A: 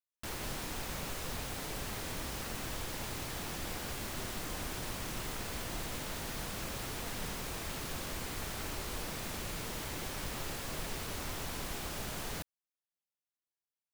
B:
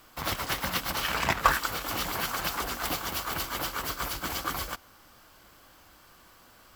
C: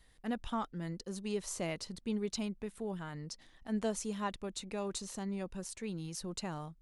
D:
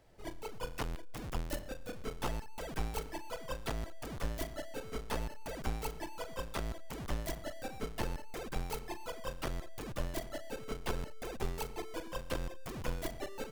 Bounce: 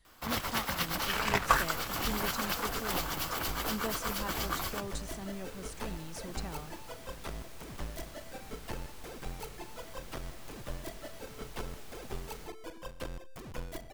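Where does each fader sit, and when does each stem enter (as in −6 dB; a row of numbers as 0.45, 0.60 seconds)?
−11.5, −3.0, −3.5, −3.5 decibels; 0.05, 0.05, 0.00, 0.70 seconds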